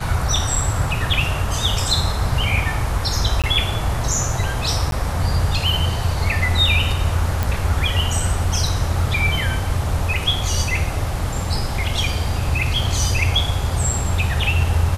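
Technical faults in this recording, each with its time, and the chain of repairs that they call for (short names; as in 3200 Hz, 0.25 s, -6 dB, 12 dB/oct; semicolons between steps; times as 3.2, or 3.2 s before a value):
3.42–3.44 gap 17 ms
4.91–4.92 gap 12 ms
7.43 pop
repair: de-click; interpolate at 3.42, 17 ms; interpolate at 4.91, 12 ms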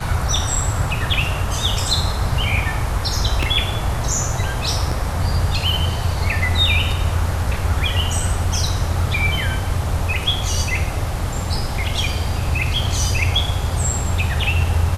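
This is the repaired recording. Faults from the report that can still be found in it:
none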